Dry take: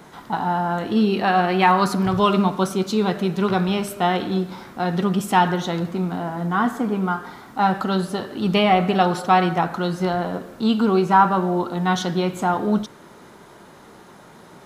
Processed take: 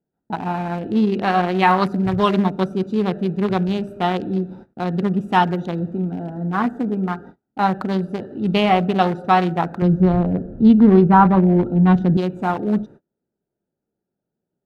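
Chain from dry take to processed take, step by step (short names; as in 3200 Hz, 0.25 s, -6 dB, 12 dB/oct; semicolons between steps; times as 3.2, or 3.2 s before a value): Wiener smoothing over 41 samples; 9.82–12.17 RIAA curve playback; gate -40 dBFS, range -34 dB; gain +1.5 dB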